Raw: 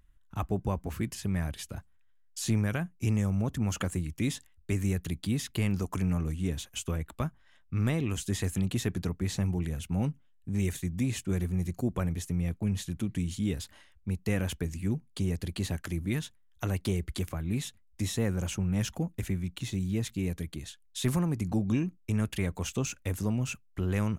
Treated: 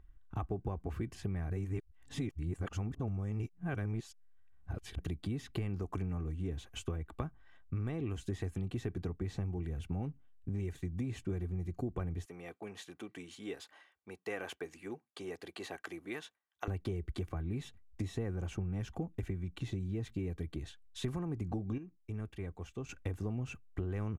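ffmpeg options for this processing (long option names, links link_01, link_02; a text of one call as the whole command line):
ffmpeg -i in.wav -filter_complex "[0:a]asettb=1/sr,asplit=3[link_01][link_02][link_03];[link_01]atrim=end=12.254[link_04];[link_02]atrim=start=12.25:end=16.68,asetpts=PTS-STARTPTS,afade=type=in:duration=0.004:curve=qsin,afade=type=out:start_time=4.426:duration=0.004:curve=qsin,highpass=570[link_05];[link_03]atrim=start=16.676[link_06];[link_04][link_05]acrossfade=duration=0.004:curve1=hsin:curve2=qsin[link_07];[link_07][link_06]acrossfade=duration=0.004:curve1=qsin:curve2=hsin,asplit=5[link_08][link_09][link_10][link_11][link_12];[link_08]atrim=end=1.502[link_13];[link_09]atrim=start=1.498:end=4.992,asetpts=PTS-STARTPTS,areverse[link_14];[link_10]atrim=start=4.988:end=21.78,asetpts=PTS-STARTPTS,afade=type=out:start_time=16.632:duration=0.16:curve=log:silence=0.251189[link_15];[link_11]atrim=start=21.78:end=22.89,asetpts=PTS-STARTPTS,volume=-12dB[link_16];[link_12]atrim=start=22.89,asetpts=PTS-STARTPTS,afade=type=in:duration=0.16:curve=log:silence=0.251189[link_17];[link_13][link_14]acrossfade=duration=0.004:curve1=hsin:curve2=hsin[link_18];[link_15][link_16][link_17]concat=n=3:v=0:a=1[link_19];[link_18][link_19]acrossfade=duration=0.004:curve1=hsin:curve2=hsin,lowpass=frequency=1200:poles=1,aecho=1:1:2.6:0.39,acompressor=threshold=-36dB:ratio=6,volume=2dB" out.wav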